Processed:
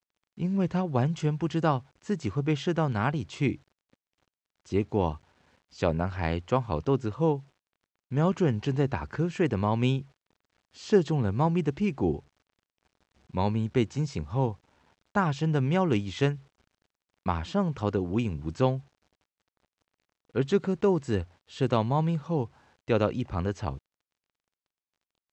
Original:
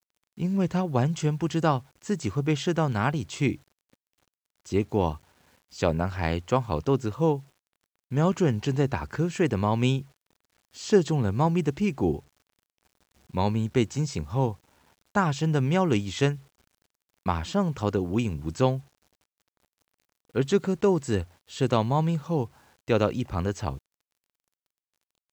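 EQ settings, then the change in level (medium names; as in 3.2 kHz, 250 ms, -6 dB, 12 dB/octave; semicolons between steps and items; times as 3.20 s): distance through air 94 m; -1.5 dB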